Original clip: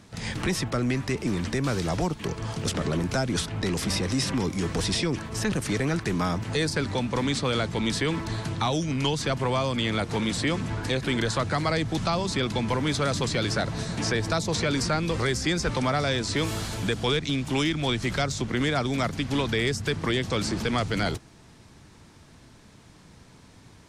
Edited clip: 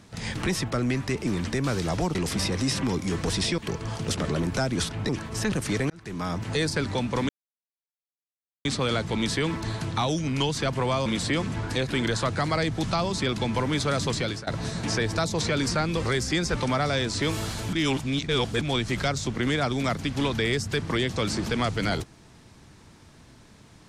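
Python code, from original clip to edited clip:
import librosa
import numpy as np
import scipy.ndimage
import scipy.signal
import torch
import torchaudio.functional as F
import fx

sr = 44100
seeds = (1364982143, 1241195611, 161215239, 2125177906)

y = fx.edit(x, sr, fx.move(start_s=3.66, length_s=1.43, to_s=2.15),
    fx.fade_in_span(start_s=5.9, length_s=0.56),
    fx.insert_silence(at_s=7.29, length_s=1.36),
    fx.cut(start_s=9.7, length_s=0.5),
    fx.fade_out_to(start_s=13.23, length_s=0.38, curve='qsin', floor_db=-23.5),
    fx.reverse_span(start_s=16.87, length_s=0.88), tone=tone)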